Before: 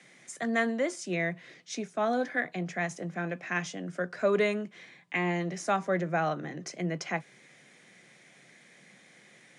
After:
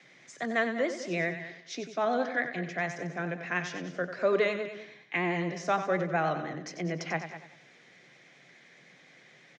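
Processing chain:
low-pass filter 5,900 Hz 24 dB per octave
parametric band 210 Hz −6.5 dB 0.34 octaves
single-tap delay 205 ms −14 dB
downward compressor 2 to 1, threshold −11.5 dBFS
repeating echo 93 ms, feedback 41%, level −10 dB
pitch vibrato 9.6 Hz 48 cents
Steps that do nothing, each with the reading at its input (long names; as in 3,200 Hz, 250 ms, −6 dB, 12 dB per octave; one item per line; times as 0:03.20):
downward compressor, threshold −11.5 dBFS: peak of its input −15.0 dBFS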